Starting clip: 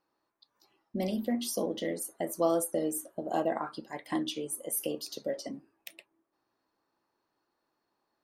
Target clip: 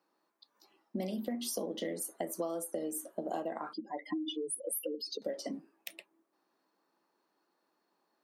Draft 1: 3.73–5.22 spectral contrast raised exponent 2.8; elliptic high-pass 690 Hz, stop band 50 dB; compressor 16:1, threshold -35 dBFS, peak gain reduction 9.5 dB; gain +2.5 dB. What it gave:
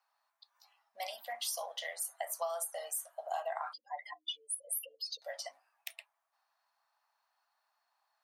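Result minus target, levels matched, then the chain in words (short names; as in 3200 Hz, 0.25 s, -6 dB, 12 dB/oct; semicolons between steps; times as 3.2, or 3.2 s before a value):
500 Hz band -3.5 dB
3.73–5.22 spectral contrast raised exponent 2.8; elliptic high-pass 170 Hz, stop band 50 dB; compressor 16:1, threshold -35 dBFS, peak gain reduction 14 dB; gain +2.5 dB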